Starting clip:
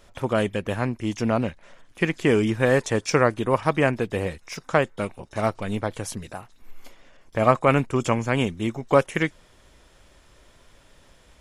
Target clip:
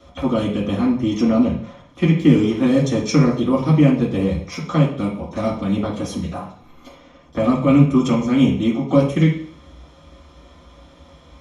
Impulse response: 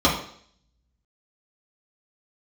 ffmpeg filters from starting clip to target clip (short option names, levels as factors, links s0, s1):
-filter_complex "[0:a]acrossover=split=340|2900[s0][s1][s2];[s1]acompressor=threshold=0.02:ratio=6[s3];[s0][s3][s2]amix=inputs=3:normalize=0,asettb=1/sr,asplit=3[s4][s5][s6];[s4]atrim=end=2.034[s7];[s5]atrim=start=2.03:end=2.61,asetpts=PTS-STARTPTS,afade=t=in:d=0.004:c=qsin,afade=t=out:st=0.576:d=0.004:c=qsin,aeval=exprs='sgn(val(0))*max(abs(val(0))-0.00668,0)':c=same[s8];[s6]atrim=start=2.606[s9];[s7][s8]acrossfade=d=0.004:c1=hsin:c2=qsin[s10];[s10][s9]acrossfade=d=0.004:c1=qsin:c2=hsin[s11];[1:a]atrim=start_sample=2205[s12];[s11][s12]afir=irnorm=-1:irlink=0,volume=0.251"